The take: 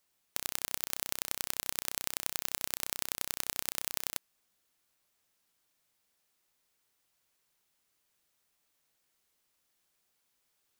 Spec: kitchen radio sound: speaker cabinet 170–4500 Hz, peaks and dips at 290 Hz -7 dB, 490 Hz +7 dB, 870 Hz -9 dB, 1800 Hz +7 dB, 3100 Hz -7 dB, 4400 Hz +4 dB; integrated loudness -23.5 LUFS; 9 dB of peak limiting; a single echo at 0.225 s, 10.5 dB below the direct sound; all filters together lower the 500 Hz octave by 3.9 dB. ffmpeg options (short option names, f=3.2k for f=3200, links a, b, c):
-af "equalizer=f=500:t=o:g=-7.5,alimiter=limit=-12.5dB:level=0:latency=1,highpass=170,equalizer=f=290:t=q:w=4:g=-7,equalizer=f=490:t=q:w=4:g=7,equalizer=f=870:t=q:w=4:g=-9,equalizer=f=1.8k:t=q:w=4:g=7,equalizer=f=3.1k:t=q:w=4:g=-7,equalizer=f=4.4k:t=q:w=4:g=4,lowpass=f=4.5k:w=0.5412,lowpass=f=4.5k:w=1.3066,aecho=1:1:225:0.299,volume=25dB"